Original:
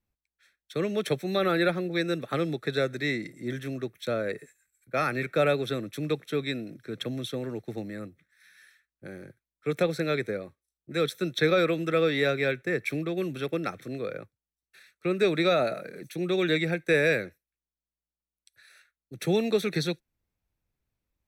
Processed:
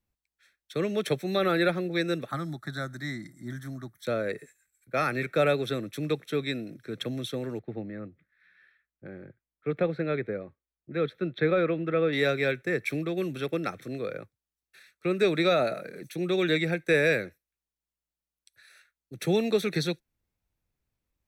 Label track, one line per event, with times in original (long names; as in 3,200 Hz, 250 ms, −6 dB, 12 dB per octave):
2.310000	4.050000	phaser with its sweep stopped centre 1,100 Hz, stages 4
7.590000	12.130000	high-frequency loss of the air 440 metres